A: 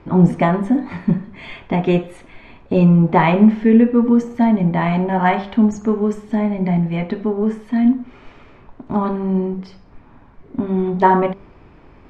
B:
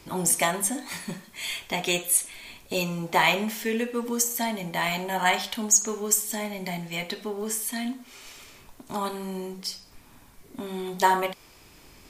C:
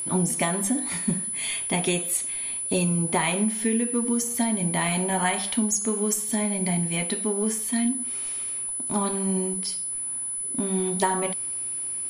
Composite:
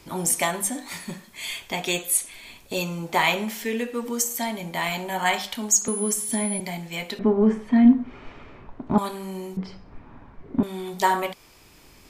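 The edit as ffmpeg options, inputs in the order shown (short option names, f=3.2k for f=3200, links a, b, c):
-filter_complex "[0:a]asplit=2[a][b];[1:a]asplit=4[c][d][e][f];[c]atrim=end=5.882[g];[2:a]atrim=start=5.878:end=6.602[h];[d]atrim=start=6.598:end=7.192[i];[a]atrim=start=7.188:end=8.982[j];[e]atrim=start=8.978:end=9.572[k];[b]atrim=start=9.568:end=10.632[l];[f]atrim=start=10.628[m];[g][h]acrossfade=d=0.004:c1=hsin:c2=hsin[n];[n][i]acrossfade=d=0.004:c1=hsin:c2=hsin[o];[o][j]acrossfade=d=0.004:c1=hsin:c2=hsin[p];[p][k]acrossfade=d=0.004:c1=hsin:c2=hsin[q];[q][l]acrossfade=d=0.004:c1=hsin:c2=hsin[r];[r][m]acrossfade=d=0.004:c1=hsin:c2=hsin"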